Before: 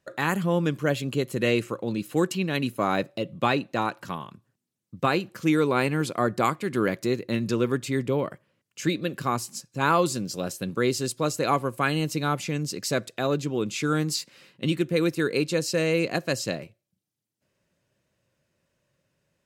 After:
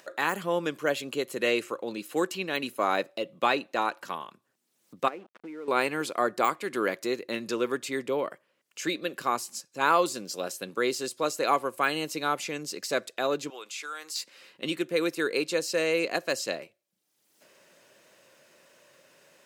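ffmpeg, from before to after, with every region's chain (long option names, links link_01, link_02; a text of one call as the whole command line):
ffmpeg -i in.wav -filter_complex "[0:a]asettb=1/sr,asplit=3[link_01][link_02][link_03];[link_01]atrim=end=5.084[link_04];[link_02]atrim=start=5.08:end=5.68,asetpts=PTS-STARTPTS,afade=type=in:duration=0.004:curve=qsin,afade=type=out:start_time=0.596:duration=0.004:curve=qsin,highpass=frequency=170:width=0.5412,highpass=frequency=170:width=1.3066,equalizer=frequency=230:width_type=q:width=4:gain=8,equalizer=frequency=970:width_type=q:width=4:gain=-8,equalizer=frequency=1600:width_type=q:width=4:gain=-9,lowpass=frequency=2000:width=0.5412,lowpass=frequency=2000:width=1.3066,aeval=exprs='sgn(val(0))*max(abs(val(0))-0.0075,0)':channel_layout=same,acompressor=threshold=-32dB:ratio=12:attack=3.2:release=140:knee=1:detection=peak[link_05];[link_03]atrim=start=5.676[link_06];[link_04][link_05]acrossfade=duration=0.004:curve1=hsin:curve2=qsin[link_07];[link_07][link_06]acrossfade=duration=0.004:curve1=qsin:curve2=hsin,asettb=1/sr,asplit=3[link_08][link_09][link_10];[link_08]atrim=end=13.504[link_11];[link_09]atrim=start=13.5:end=14.16,asetpts=PTS-STARTPTS,afade=type=in:duration=0.004:curve=qsin,afade=type=out:start_time=0.656:duration=0.004:curve=qsin,highpass=870,acompressor=threshold=-36dB:ratio=2.5:attack=3.2:release=140:knee=1:detection=peak[link_12];[link_10]atrim=start=14.156[link_13];[link_11][link_12]acrossfade=duration=0.004:curve1=hsin:curve2=qsin[link_14];[link_14][link_13]acrossfade=duration=0.004:curve1=qsin:curve2=hsin,deesser=0.6,highpass=400,acompressor=mode=upward:threshold=-43dB:ratio=2.5" out.wav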